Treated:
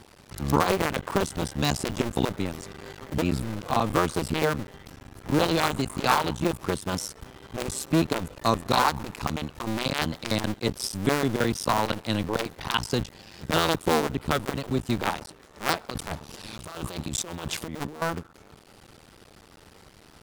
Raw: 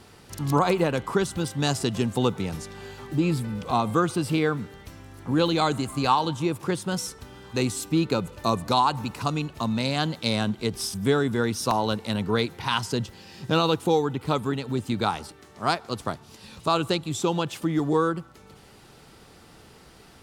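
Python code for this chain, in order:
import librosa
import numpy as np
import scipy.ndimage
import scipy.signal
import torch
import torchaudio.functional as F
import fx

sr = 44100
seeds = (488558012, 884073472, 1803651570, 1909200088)

y = fx.cycle_switch(x, sr, every=2, mode='muted')
y = fx.over_compress(y, sr, threshold_db=-36.0, ratio=-1.0, at=(15.89, 18.02))
y = F.gain(torch.from_numpy(y), 1.5).numpy()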